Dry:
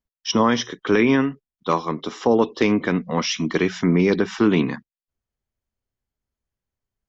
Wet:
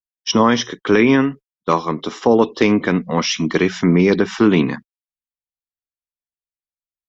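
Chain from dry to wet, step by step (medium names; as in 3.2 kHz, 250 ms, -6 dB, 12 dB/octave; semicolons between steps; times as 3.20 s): gate -36 dBFS, range -29 dB; trim +4 dB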